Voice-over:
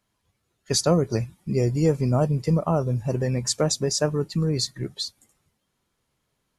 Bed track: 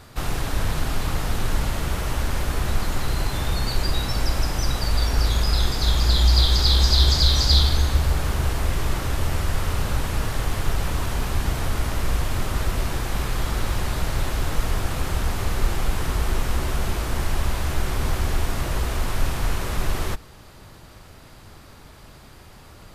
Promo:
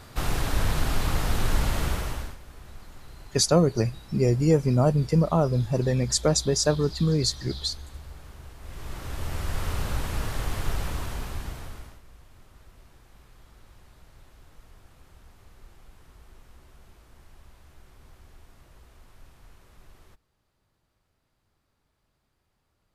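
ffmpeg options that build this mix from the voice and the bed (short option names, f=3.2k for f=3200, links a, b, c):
-filter_complex "[0:a]adelay=2650,volume=0.5dB[a];[1:a]volume=16dB,afade=t=out:st=1.84:d=0.53:silence=0.0891251,afade=t=in:st=8.59:d=1.08:silence=0.141254,afade=t=out:st=10.74:d=1.27:silence=0.0630957[b];[a][b]amix=inputs=2:normalize=0"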